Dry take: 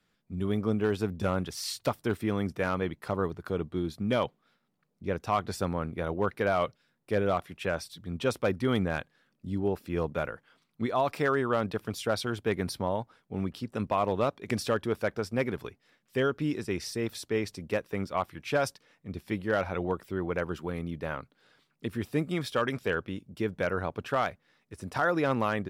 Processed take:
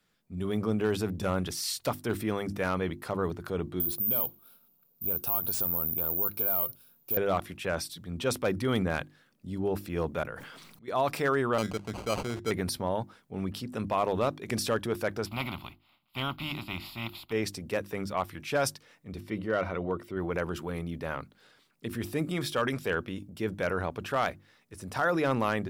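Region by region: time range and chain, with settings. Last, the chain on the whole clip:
3.8–7.17 compressor 4:1, threshold -35 dBFS + Butterworth band-stop 1900 Hz, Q 2.5 + careless resampling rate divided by 3×, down none, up zero stuff
10.23–10.88 auto swell 0.557 s + sustainer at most 29 dB/s
11.58–12.51 Chebyshev band-stop 1200–3700 Hz, order 4 + sample-rate reducer 1800 Hz + air absorption 56 m
15.25–17.31 spectral contrast lowered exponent 0.54 + running mean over 5 samples + fixed phaser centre 1700 Hz, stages 6
19.2–20.17 high shelf 5200 Hz -11.5 dB + notch comb 830 Hz
whole clip: high shelf 7100 Hz +7 dB; notches 50/100/150/200/250/300/350 Hz; transient shaper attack -2 dB, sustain +4 dB

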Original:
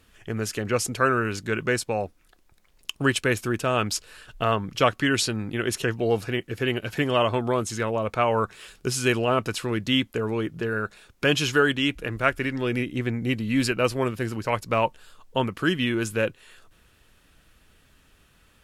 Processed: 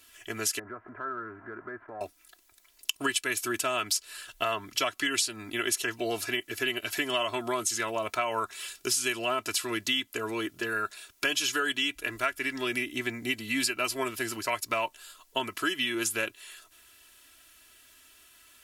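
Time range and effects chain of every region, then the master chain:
0.59–2.01 switching spikes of -17.5 dBFS + steep low-pass 1600 Hz 48 dB/oct + compressor 2.5:1, threshold -36 dBFS
whole clip: tilt +3.5 dB/oct; comb 3 ms, depth 79%; compressor 6:1, threshold -22 dBFS; gain -3 dB

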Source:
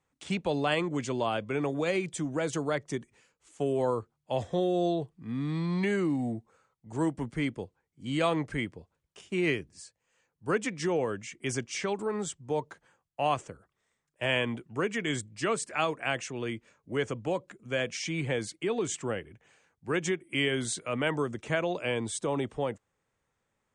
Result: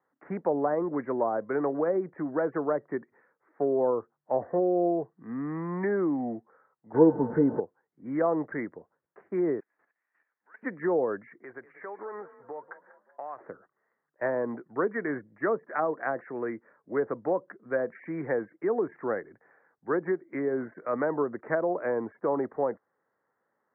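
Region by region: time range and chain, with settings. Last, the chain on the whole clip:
6.94–7.6 delta modulation 64 kbps, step -34.5 dBFS + tilt -3.5 dB/oct + small resonant body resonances 470/890/1500 Hz, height 14 dB, ringing for 0.1 s
9.6–10.63 level quantiser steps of 24 dB + ladder band-pass 3300 Hz, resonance 65% + power-law curve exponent 0.5
11.43–13.41 bell 180 Hz -13.5 dB 1.5 oct + compressor, threshold -39 dBFS + frequency-shifting echo 0.191 s, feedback 50%, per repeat +32 Hz, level -15.5 dB
whole clip: HPF 300 Hz 12 dB/oct; treble ducked by the level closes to 780 Hz, closed at -25.5 dBFS; steep low-pass 1900 Hz 72 dB/oct; gain +4.5 dB

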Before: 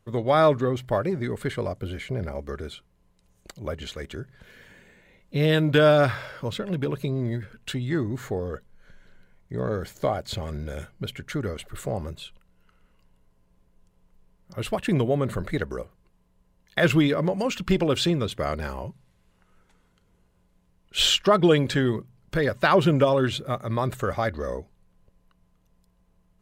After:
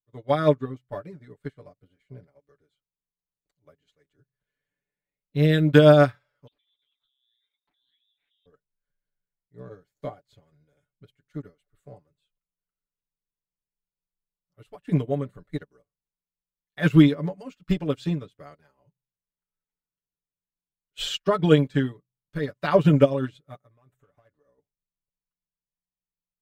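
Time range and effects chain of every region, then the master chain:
6.47–8.46 compressor 4:1, threshold -38 dBFS + inverted band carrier 3700 Hz + Doppler distortion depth 0.71 ms
23.66–24.58 hard clip -19 dBFS + bell 4500 Hz -10.5 dB 0.64 oct + compressor 16:1, threshold -29 dBFS
whole clip: comb 6.9 ms, depth 85%; dynamic EQ 210 Hz, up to +6 dB, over -31 dBFS, Q 1.4; upward expander 2.5:1, over -35 dBFS

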